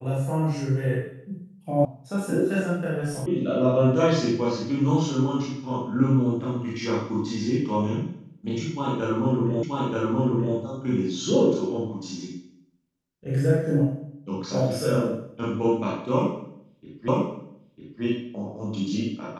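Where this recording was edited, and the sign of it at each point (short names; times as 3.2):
1.85 sound cut off
3.26 sound cut off
9.63 repeat of the last 0.93 s
17.08 repeat of the last 0.95 s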